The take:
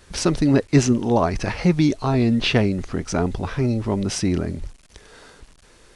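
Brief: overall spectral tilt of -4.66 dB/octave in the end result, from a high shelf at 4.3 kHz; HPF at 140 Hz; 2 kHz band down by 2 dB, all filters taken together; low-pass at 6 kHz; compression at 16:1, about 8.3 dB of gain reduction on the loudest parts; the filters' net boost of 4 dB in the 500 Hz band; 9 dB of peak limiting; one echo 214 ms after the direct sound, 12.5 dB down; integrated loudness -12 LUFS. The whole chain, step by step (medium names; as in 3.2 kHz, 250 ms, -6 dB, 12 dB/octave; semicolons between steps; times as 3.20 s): high-pass 140 Hz; low-pass 6 kHz; peaking EQ 500 Hz +5.5 dB; peaking EQ 2 kHz -5 dB; treble shelf 4.3 kHz +8 dB; compression 16:1, threshold -18 dBFS; peak limiter -18 dBFS; delay 214 ms -12.5 dB; trim +16 dB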